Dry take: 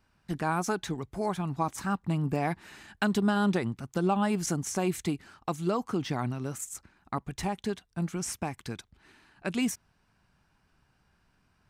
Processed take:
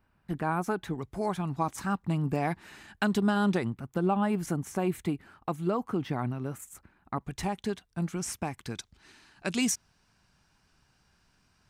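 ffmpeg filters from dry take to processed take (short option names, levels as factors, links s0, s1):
-af "asetnsamples=n=441:p=0,asendcmd='0.99 equalizer g -1.5;3.7 equalizer g -12;7.21 equalizer g -1;8.75 equalizer g 9',equalizer=f=5900:t=o:w=1.6:g=-12.5"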